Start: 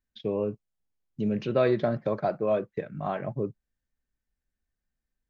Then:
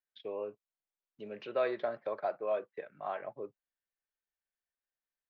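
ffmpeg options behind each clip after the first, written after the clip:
-filter_complex "[0:a]acrossover=split=420 4400:gain=0.0631 1 0.0891[a][b][c];[a][b][c]amix=inputs=3:normalize=0,volume=-5dB"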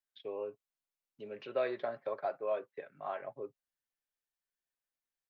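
-af "aecho=1:1:7.4:0.32,volume=-2dB"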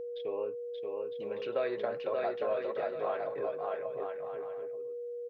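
-filter_complex "[0:a]asplit=2[a][b];[b]aecho=0:1:580|957|1202|1361|1465:0.631|0.398|0.251|0.158|0.1[c];[a][c]amix=inputs=2:normalize=0,acompressor=threshold=-35dB:ratio=2,aeval=exprs='val(0)+0.00891*sin(2*PI*480*n/s)':c=same,volume=4dB"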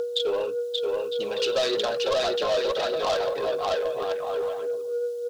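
-filter_complex "[0:a]aphaser=in_gain=1:out_gain=1:delay=2.4:decay=0.41:speed=1.7:type=triangular,asplit=2[a][b];[b]highpass=f=720:p=1,volume=18dB,asoftclip=type=tanh:threshold=-19.5dB[c];[a][c]amix=inputs=2:normalize=0,lowpass=f=1.7k:p=1,volume=-6dB,aexciter=amount=7.9:drive=9:freq=3.3k,volume=3dB"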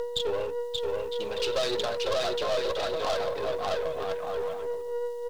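-af "aeval=exprs='if(lt(val(0),0),0.447*val(0),val(0))':c=same,volume=-1dB"

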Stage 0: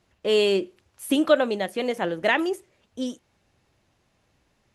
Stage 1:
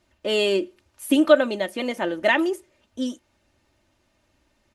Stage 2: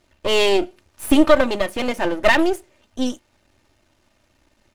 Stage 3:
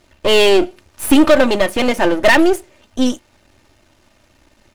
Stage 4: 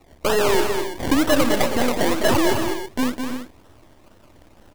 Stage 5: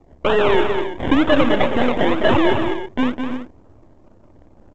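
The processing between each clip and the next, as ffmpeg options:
-af "aecho=1:1:3.3:0.55"
-af "aeval=exprs='if(lt(val(0),0),0.251*val(0),val(0))':c=same,alimiter=level_in=8dB:limit=-1dB:release=50:level=0:latency=1"
-af "asoftclip=type=tanh:threshold=-10.5dB,volume=8dB"
-filter_complex "[0:a]acompressor=threshold=-25dB:ratio=2,acrusher=samples=27:mix=1:aa=0.000001:lfo=1:lforange=16.2:lforate=2.1,asplit=2[a][b];[b]aecho=0:1:206|275|330:0.501|0.211|0.282[c];[a][c]amix=inputs=2:normalize=0,volume=1.5dB"
-af "adynamicsmooth=sensitivity=5:basefreq=700,aresample=8000,aresample=44100,volume=3dB" -ar 16000 -c:a pcm_mulaw

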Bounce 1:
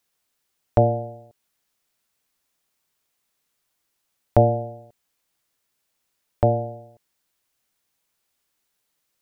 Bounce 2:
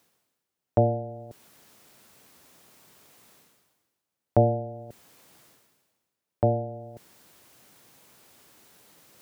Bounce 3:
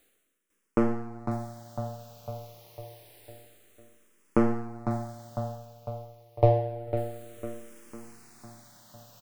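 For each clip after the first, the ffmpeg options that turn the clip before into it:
-af "highpass=100,tiltshelf=f=970:g=5,areverse,acompressor=mode=upward:threshold=-27dB:ratio=2.5,areverse,volume=-6.5dB"
-filter_complex "[0:a]aeval=exprs='if(lt(val(0),0),0.447*val(0),val(0))':c=same,asplit=2[a][b];[b]aecho=0:1:502|1004|1506|2008|2510|3012:0.376|0.199|0.106|0.056|0.0297|0.0157[c];[a][c]amix=inputs=2:normalize=0,asplit=2[d][e];[e]afreqshift=-0.28[f];[d][f]amix=inputs=2:normalize=1,volume=6dB"

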